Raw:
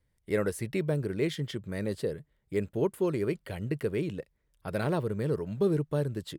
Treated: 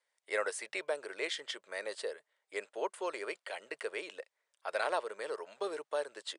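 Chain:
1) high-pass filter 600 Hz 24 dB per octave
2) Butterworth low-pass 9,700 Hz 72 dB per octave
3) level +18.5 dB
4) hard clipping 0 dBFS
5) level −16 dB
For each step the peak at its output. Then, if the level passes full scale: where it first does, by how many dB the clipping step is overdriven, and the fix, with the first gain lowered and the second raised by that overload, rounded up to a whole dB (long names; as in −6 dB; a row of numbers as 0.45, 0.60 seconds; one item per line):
−22.0, −21.5, −3.0, −3.0, −19.0 dBFS
no step passes full scale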